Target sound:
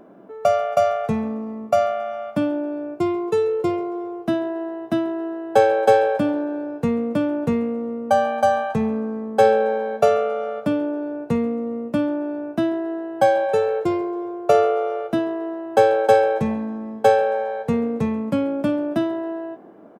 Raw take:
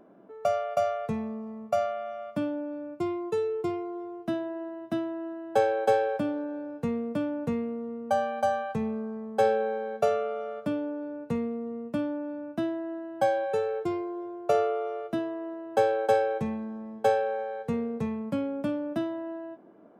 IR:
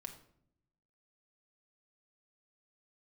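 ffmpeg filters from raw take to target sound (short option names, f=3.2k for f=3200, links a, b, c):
-filter_complex "[0:a]asplit=4[a][b][c][d];[b]adelay=135,afreqshift=56,volume=-22dB[e];[c]adelay=270,afreqshift=112,volume=-28.6dB[f];[d]adelay=405,afreqshift=168,volume=-35.1dB[g];[a][e][f][g]amix=inputs=4:normalize=0,volume=8.5dB"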